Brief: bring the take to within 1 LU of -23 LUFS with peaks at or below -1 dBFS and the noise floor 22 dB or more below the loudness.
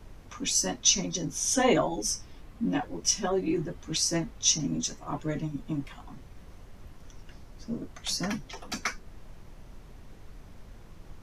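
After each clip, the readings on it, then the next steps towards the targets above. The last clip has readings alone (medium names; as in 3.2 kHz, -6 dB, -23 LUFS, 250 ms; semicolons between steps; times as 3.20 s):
noise floor -50 dBFS; noise floor target -51 dBFS; loudness -28.5 LUFS; peak level -8.0 dBFS; loudness target -23.0 LUFS
-> noise print and reduce 6 dB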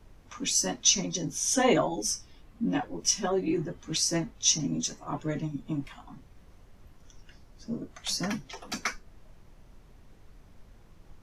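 noise floor -56 dBFS; loudness -28.5 LUFS; peak level -8.0 dBFS; loudness target -23.0 LUFS
-> trim +5.5 dB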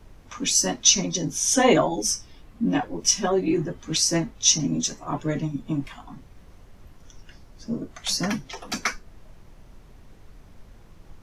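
loudness -23.0 LUFS; peak level -2.5 dBFS; noise floor -50 dBFS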